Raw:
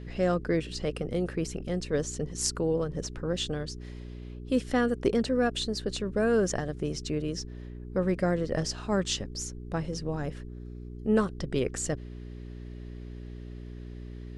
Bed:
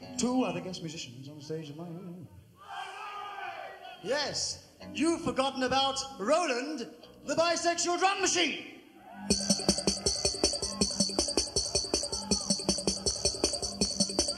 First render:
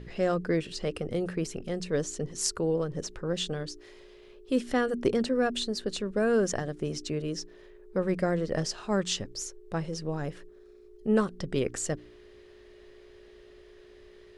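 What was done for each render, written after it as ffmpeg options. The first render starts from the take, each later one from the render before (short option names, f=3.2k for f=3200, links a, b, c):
-af "bandreject=f=60:t=h:w=4,bandreject=f=120:t=h:w=4,bandreject=f=180:t=h:w=4,bandreject=f=240:t=h:w=4,bandreject=f=300:t=h:w=4"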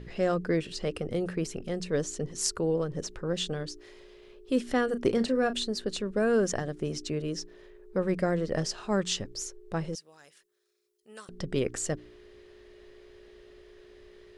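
-filter_complex "[0:a]asettb=1/sr,asplit=3[a][b][c];[a]atrim=end=4.874[d];[b]atrim=start=4.87:end=5.54,asetpts=PTS-STARTPTS,afade=t=in:d=0.004:c=qsin,afade=t=out:st=0.666:d=0.004:c=qsin,asplit=2[e][f];[f]adelay=35,volume=-12dB[g];[e][g]amix=inputs=2:normalize=0,atrim=end_sample=29547[h];[c]atrim=start=5.536[i];[d][h]acrossfade=d=0.004:c1=hsin:c2=qsin[j];[j][i]acrossfade=d=0.004:c1=qsin:c2=hsin,asettb=1/sr,asplit=3[k][l][m];[k]atrim=end=9.954[n];[l]atrim=start=9.95:end=11.29,asetpts=PTS-STARTPTS,afade=t=in:d=0.004:c=qsin,afade=t=out:st=1.336:d=0.004:c=qsin,aderivative[o];[m]atrim=start=11.286[p];[n][o]acrossfade=d=0.004:c1=hsin:c2=qsin[q];[q][p]acrossfade=d=0.004:c1=qsin:c2=hsin"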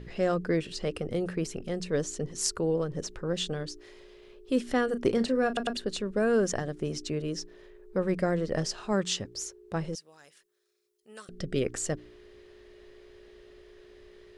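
-filter_complex "[0:a]asettb=1/sr,asplit=3[a][b][c];[a]atrim=end=8.934[d];[b]atrim=start=8.93:end=9.76,asetpts=PTS-STARTPTS,afade=t=in:d=0.004:c=qsin,afade=t=out:st=0.826:d=0.004:c=qsin,highpass=43[e];[c]atrim=start=9.756[f];[d][e]acrossfade=d=0.004:c1=hsin:c2=qsin[g];[g][f]acrossfade=d=0.004:c1=qsin:c2=hsin,asettb=1/sr,asplit=3[h][i][j];[h]atrim=end=11.224[k];[i]atrim=start=11.22:end=11.63,asetpts=PTS-STARTPTS,afade=t=in:d=0.004:c=qsin,afade=t=out:st=0.406:d=0.004:c=qsin,asuperstop=centerf=940:order=4:qfactor=2.1[l];[j]atrim=start=11.626[m];[k][l]acrossfade=d=0.004:c1=hsin:c2=qsin[n];[n][m]acrossfade=d=0.004:c1=qsin:c2=hsin,asplit=4[o][p][q][r];[o]atrim=end=5.572[s];[p]atrim=start=5.468:end=5.572[t];[q]atrim=start=5.468:end=5.572[u];[r]atrim=start=5.768[v];[s][t]acrossfade=d=0.004:c1=hsin:c2=hsin[w];[w][u]acrossfade=d=0.004:c1=hsin:c2=hsin[x];[x][v]acrossfade=d=0.004:c1=hsin:c2=hsin"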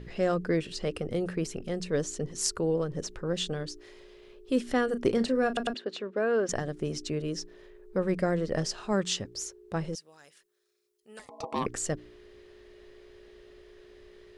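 -filter_complex "[0:a]asettb=1/sr,asplit=3[a][b][c];[a]atrim=end=5.744[d];[b]atrim=start=5.74:end=6.49,asetpts=PTS-STARTPTS,afade=t=in:d=0.004:c=qsin,afade=t=out:st=0.746:d=0.004:c=qsin,highpass=330,lowpass=3.4k[e];[c]atrim=start=6.486[f];[d][e]acrossfade=d=0.004:c1=hsin:c2=qsin[g];[g][f]acrossfade=d=0.004:c1=qsin:c2=hsin,asettb=1/sr,asplit=3[h][i][j];[h]atrim=end=11.194[k];[i]atrim=start=11.19:end=11.66,asetpts=PTS-STARTPTS,afade=t=in:d=0.004:c=qsin,afade=t=out:st=0.466:d=0.004:c=qsin,aeval=exprs='val(0)*sin(2*PI*650*n/s)':c=same[l];[j]atrim=start=11.656[m];[k][l]acrossfade=d=0.004:c1=hsin:c2=qsin[n];[n][m]acrossfade=d=0.004:c1=qsin:c2=hsin"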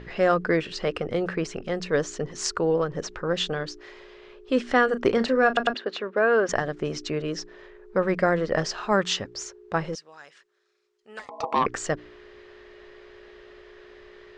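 -af "lowpass=f=7.1k:w=0.5412,lowpass=f=7.1k:w=1.3066,equalizer=f=1.3k:t=o:w=2.7:g=11.5"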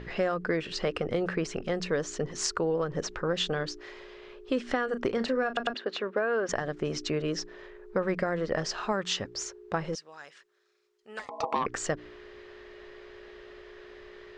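-af "alimiter=limit=-12dB:level=0:latency=1:release=487,acompressor=threshold=-25dB:ratio=4"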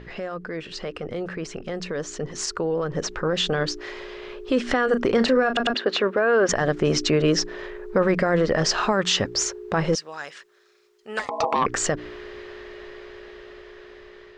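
-af "alimiter=limit=-23dB:level=0:latency=1:release=24,dynaudnorm=f=950:g=7:m=12dB"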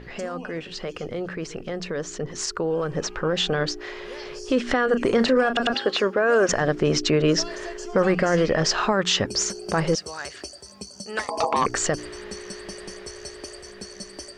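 -filter_complex "[1:a]volume=-10.5dB[a];[0:a][a]amix=inputs=2:normalize=0"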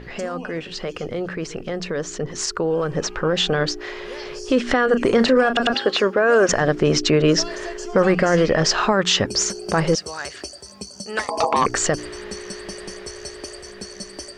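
-af "volume=3.5dB"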